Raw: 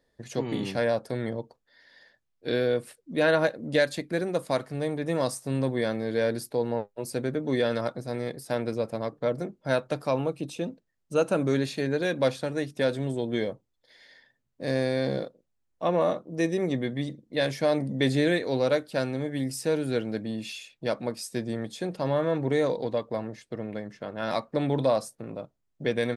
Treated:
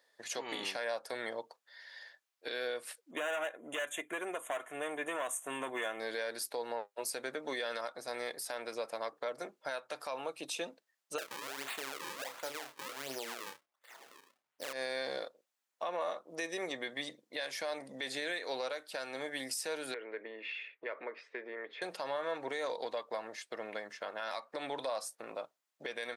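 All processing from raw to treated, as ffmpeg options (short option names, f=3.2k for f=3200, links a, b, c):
-filter_complex "[0:a]asettb=1/sr,asplit=3[a][b][c];[a]atrim=end=3.114[d];[b]atrim=start=3.11:end=6,asetpts=PTS-STARTPTS,afade=t=in:d=0.004:c=qsin,afade=t=out:st=2.886:d=0.004:c=qsin,aecho=1:1:2.9:0.37,atrim=end_sample=127449,volume=22.5dB,asoftclip=hard,volume=-22.5dB,asuperstop=centerf=4700:order=8:qfactor=1.6[e];[c]atrim=start=5.996[f];[d][e]acrossfade=d=0.004:c1=hsin:c2=qsin[g];[g][f]acrossfade=d=0.004:c1=qsin:c2=hsin,asettb=1/sr,asplit=3[h][i][j];[h]atrim=end=11.184[k];[i]atrim=start=11.18:end=14.73,asetpts=PTS-STARTPTS,afade=t=in:d=0.004:c=qsin,afade=t=out:st=3.546:d=0.004:c=qsin,acrusher=samples=36:mix=1:aa=0.000001:lfo=1:lforange=57.6:lforate=1.4,asplit=2[l][m];[m]adelay=30,volume=-10.5dB[n];[l][n]amix=inputs=2:normalize=0,atrim=end_sample=156555[o];[j]atrim=start=14.726[p];[k][o]acrossfade=d=0.004:c1=hsin:c2=qsin[q];[q][p]acrossfade=d=0.004:c1=qsin:c2=hsin,asettb=1/sr,asplit=3[r][s][t];[r]atrim=end=19.944[u];[s]atrim=start=19.94:end=21.82,asetpts=PTS-STARTPTS,afade=t=in:d=0.004:c=qsin,afade=t=out:st=1.876:d=0.004:c=qsin,acompressor=threshold=-34dB:ratio=4:attack=3.2:release=140:knee=1:detection=peak,highpass=f=170:w=0.5412,highpass=f=170:w=1.3066,equalizer=f=210:t=q:w=4:g=-9,equalizer=f=420:t=q:w=4:g=10,equalizer=f=770:t=q:w=4:g=-7,equalizer=f=2k:t=q:w=4:g=8,lowpass=f=2.4k:w=0.5412,lowpass=f=2.4k:w=1.3066[v];[t]atrim=start=21.816[w];[u][v]acrossfade=d=0.004:c1=hsin:c2=qsin[x];[x][w]acrossfade=d=0.004:c1=qsin:c2=hsin,highpass=820,acompressor=threshold=-40dB:ratio=2.5,alimiter=level_in=7.5dB:limit=-24dB:level=0:latency=1:release=92,volume=-7.5dB,volume=5dB"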